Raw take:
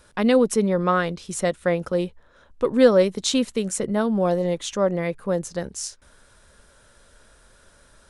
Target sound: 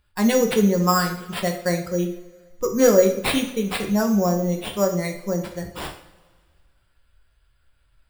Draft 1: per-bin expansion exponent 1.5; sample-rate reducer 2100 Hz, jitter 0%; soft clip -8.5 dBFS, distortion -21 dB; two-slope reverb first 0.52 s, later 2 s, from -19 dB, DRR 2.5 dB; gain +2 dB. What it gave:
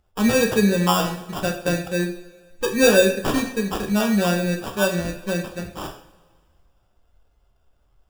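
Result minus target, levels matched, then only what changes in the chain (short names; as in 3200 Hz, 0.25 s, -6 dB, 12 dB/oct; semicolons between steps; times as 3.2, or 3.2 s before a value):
sample-rate reducer: distortion +9 dB
change: sample-rate reducer 6300 Hz, jitter 0%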